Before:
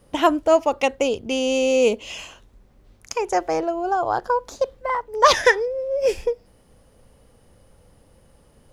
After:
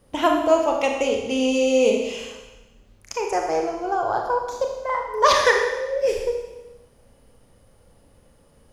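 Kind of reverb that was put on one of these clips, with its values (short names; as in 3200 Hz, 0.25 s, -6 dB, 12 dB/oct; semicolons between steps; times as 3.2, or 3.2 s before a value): Schroeder reverb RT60 1.1 s, combs from 27 ms, DRR 1.5 dB; gain -3 dB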